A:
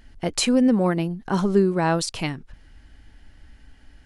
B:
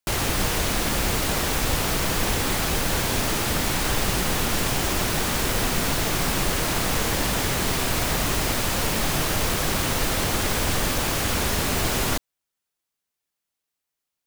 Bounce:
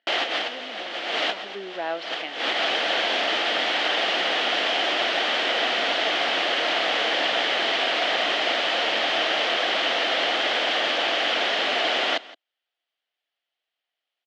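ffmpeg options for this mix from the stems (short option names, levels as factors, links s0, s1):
-filter_complex "[0:a]lowpass=4700,volume=0.422,afade=t=in:st=1.27:d=0.48:silence=0.266073,asplit=2[s0][s1];[1:a]volume=1.26,asplit=2[s2][s3];[s3]volume=0.1[s4];[s1]apad=whole_len=628905[s5];[s2][s5]sidechaincompress=threshold=0.00447:ratio=10:attack=20:release=104[s6];[s4]aecho=0:1:168:1[s7];[s0][s6][s7]amix=inputs=3:normalize=0,highpass=f=350:w=0.5412,highpass=f=350:w=1.3066,equalizer=f=400:t=q:w=4:g=-6,equalizer=f=690:t=q:w=4:g=7,equalizer=f=1000:t=q:w=4:g=-6,equalizer=f=1900:t=q:w=4:g=4,equalizer=f=3100:t=q:w=4:g=9,lowpass=f=4200:w=0.5412,lowpass=f=4200:w=1.3066"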